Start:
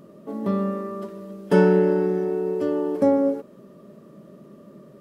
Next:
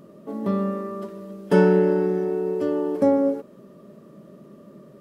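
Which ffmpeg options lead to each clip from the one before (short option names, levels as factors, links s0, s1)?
-af anull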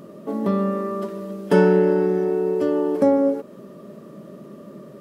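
-filter_complex "[0:a]lowshelf=f=98:g=-7,asplit=2[s0][s1];[s1]acompressor=threshold=0.0355:ratio=6,volume=1.19[s2];[s0][s2]amix=inputs=2:normalize=0"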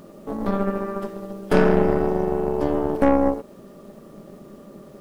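-af "tremolo=f=210:d=0.571,acrusher=bits=9:mix=0:aa=0.000001,aeval=exprs='0.794*(cos(1*acos(clip(val(0)/0.794,-1,1)))-cos(1*PI/2))+0.1*(cos(8*acos(clip(val(0)/0.794,-1,1)))-cos(8*PI/2))':c=same"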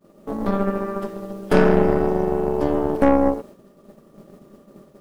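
-af "agate=range=0.0224:threshold=0.0158:ratio=3:detection=peak,volume=1.19"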